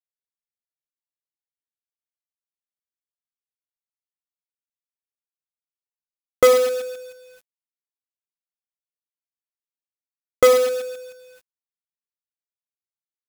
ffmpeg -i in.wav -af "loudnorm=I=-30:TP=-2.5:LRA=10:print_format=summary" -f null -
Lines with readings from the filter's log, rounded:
Input Integrated:    -18.0 LUFS
Input True Peak:      -2.0 dBTP
Input LRA:             0.0 LU
Input Threshold:     -30.6 LUFS